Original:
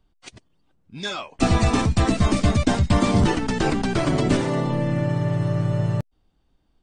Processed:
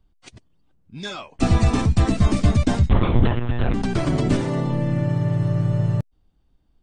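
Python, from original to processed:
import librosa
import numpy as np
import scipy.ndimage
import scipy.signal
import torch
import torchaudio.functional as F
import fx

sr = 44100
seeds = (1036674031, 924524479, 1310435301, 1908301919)

y = fx.lpc_monotone(x, sr, seeds[0], pitch_hz=120.0, order=10, at=(2.89, 3.74))
y = fx.low_shelf(y, sr, hz=220.0, db=7.5)
y = F.gain(torch.from_numpy(y), -3.5).numpy()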